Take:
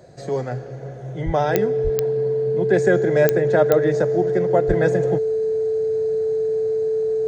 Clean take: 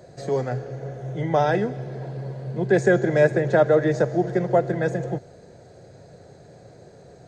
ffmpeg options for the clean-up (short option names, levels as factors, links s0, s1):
-filter_complex "[0:a]adeclick=t=4,bandreject=f=440:w=30,asplit=3[s0][s1][s2];[s0]afade=t=out:st=1.25:d=0.02[s3];[s1]highpass=f=140:w=0.5412,highpass=f=140:w=1.3066,afade=t=in:st=1.25:d=0.02,afade=t=out:st=1.37:d=0.02[s4];[s2]afade=t=in:st=1.37:d=0.02[s5];[s3][s4][s5]amix=inputs=3:normalize=0,asplit=3[s6][s7][s8];[s6]afade=t=out:st=1.83:d=0.02[s9];[s7]highpass=f=140:w=0.5412,highpass=f=140:w=1.3066,afade=t=in:st=1.83:d=0.02,afade=t=out:st=1.95:d=0.02[s10];[s8]afade=t=in:st=1.95:d=0.02[s11];[s9][s10][s11]amix=inputs=3:normalize=0,asplit=3[s12][s13][s14];[s12]afade=t=out:st=4.67:d=0.02[s15];[s13]highpass=f=140:w=0.5412,highpass=f=140:w=1.3066,afade=t=in:st=4.67:d=0.02,afade=t=out:st=4.79:d=0.02[s16];[s14]afade=t=in:st=4.79:d=0.02[s17];[s15][s16][s17]amix=inputs=3:normalize=0,asetnsamples=n=441:p=0,asendcmd='4.69 volume volume -4dB',volume=1"